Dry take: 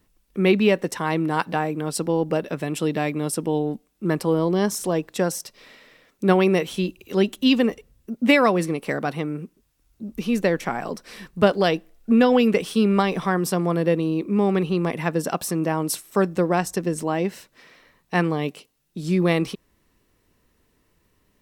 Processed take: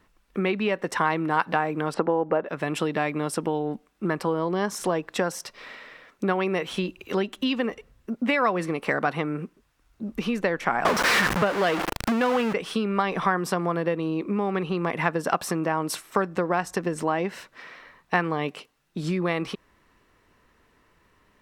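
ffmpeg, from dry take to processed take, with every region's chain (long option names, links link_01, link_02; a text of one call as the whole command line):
ffmpeg -i in.wav -filter_complex "[0:a]asettb=1/sr,asplit=3[link_01][link_02][link_03];[link_01]atrim=end=1.944[link_04];[link_02]atrim=start=1.94:end=2.49,asetpts=PTS-STARTPTS,afade=type=in:duration=0.004:curve=qsin,afade=type=out:start_time=0.546:duration=0.004:curve=qsin,deesser=0.5,lowpass=2600,equalizer=frequency=650:width=0.34:gain=11[link_05];[link_03]atrim=start=2.486[link_06];[link_04][link_05]acrossfade=duration=0.004:curve1=hsin:curve2=qsin[link_07];[link_07][link_06]acrossfade=duration=0.004:curve1=qsin:curve2=hsin,asettb=1/sr,asplit=3[link_08][link_09][link_10];[link_08]atrim=end=10.854[link_11];[link_09]atrim=start=10.85:end=12.53,asetpts=PTS-STARTPTS,afade=type=in:duration=0.004:curve=qsin,afade=type=out:start_time=1.676:duration=0.004:curve=qsin,aeval=exprs='val(0)+0.5*0.15*sgn(val(0))':channel_layout=same,highpass=frequency=98:poles=1[link_12];[link_10]atrim=start=12.526[link_13];[link_11][link_12]acrossfade=duration=0.004:curve1=hsin:curve2=qsin[link_14];[link_14][link_13]acrossfade=duration=0.004:curve1=qsin:curve2=hsin,highshelf=frequency=10000:gain=-9.5,acompressor=threshold=-25dB:ratio=6,equalizer=frequency=1300:width=0.57:gain=10" out.wav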